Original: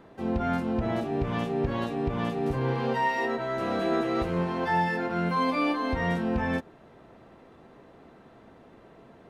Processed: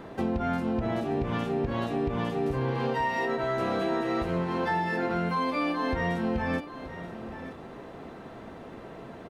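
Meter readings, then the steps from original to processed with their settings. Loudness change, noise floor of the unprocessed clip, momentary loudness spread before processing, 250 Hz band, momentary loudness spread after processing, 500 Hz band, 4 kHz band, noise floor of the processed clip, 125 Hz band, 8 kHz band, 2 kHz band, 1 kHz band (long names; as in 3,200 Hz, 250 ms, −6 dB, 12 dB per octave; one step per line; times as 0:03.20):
−1.0 dB, −54 dBFS, 3 LU, −1.0 dB, 16 LU, 0.0 dB, −1.0 dB, −44 dBFS, −1.0 dB, can't be measured, −1.0 dB, −1.0 dB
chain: downward compressor 6 to 1, threshold −35 dBFS, peak gain reduction 13 dB
single-tap delay 928 ms −13 dB
level +9 dB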